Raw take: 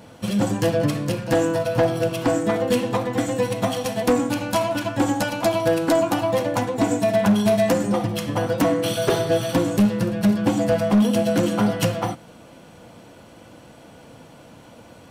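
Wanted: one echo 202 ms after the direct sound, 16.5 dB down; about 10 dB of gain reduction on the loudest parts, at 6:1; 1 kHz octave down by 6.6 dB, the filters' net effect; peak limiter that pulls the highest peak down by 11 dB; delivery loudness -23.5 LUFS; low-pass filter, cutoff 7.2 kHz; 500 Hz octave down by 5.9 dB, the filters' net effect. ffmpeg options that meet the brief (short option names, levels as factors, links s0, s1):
-af "lowpass=7200,equalizer=f=500:t=o:g=-5,equalizer=f=1000:t=o:g=-7,acompressor=threshold=0.0562:ratio=6,alimiter=level_in=1.26:limit=0.0631:level=0:latency=1,volume=0.794,aecho=1:1:202:0.15,volume=3.35"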